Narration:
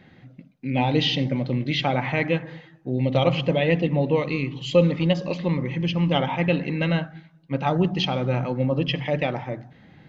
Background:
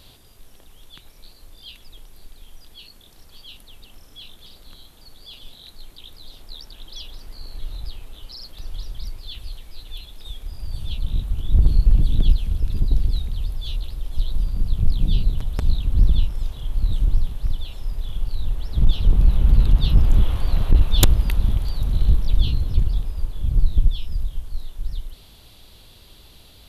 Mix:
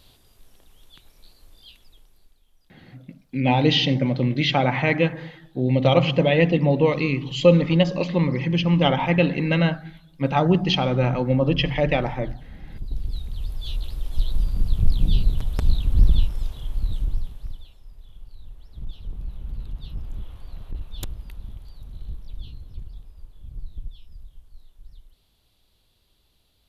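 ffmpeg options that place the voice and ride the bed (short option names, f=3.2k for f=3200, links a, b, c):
-filter_complex "[0:a]adelay=2700,volume=3dB[a];[1:a]volume=13.5dB,afade=t=out:st=1.55:d=0.87:silence=0.211349,afade=t=in:st=12.65:d=1.3:silence=0.105925,afade=t=out:st=16.14:d=1.64:silence=0.125893[b];[a][b]amix=inputs=2:normalize=0"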